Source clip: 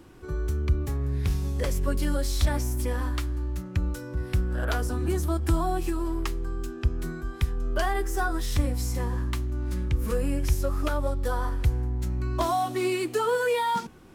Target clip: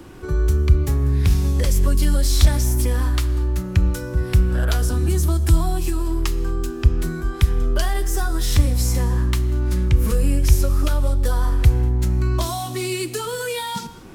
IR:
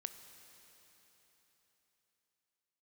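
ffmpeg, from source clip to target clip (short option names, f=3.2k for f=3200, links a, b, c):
-filter_complex "[0:a]acrossover=split=190|3000[a][b][c];[b]acompressor=threshold=-38dB:ratio=6[d];[a][d][c]amix=inputs=3:normalize=0,asplit=2[e][f];[1:a]atrim=start_sample=2205,afade=t=out:st=0.29:d=0.01,atrim=end_sample=13230[g];[f][g]afir=irnorm=-1:irlink=0,volume=10dB[h];[e][h]amix=inputs=2:normalize=0"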